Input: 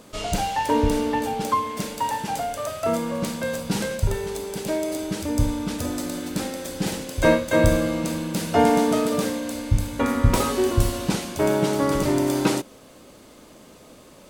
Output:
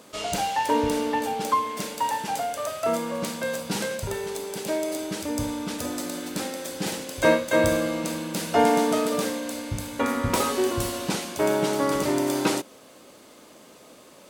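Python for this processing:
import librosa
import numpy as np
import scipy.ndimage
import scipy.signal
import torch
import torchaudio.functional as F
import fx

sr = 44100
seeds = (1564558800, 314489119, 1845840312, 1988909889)

y = fx.highpass(x, sr, hz=310.0, slope=6)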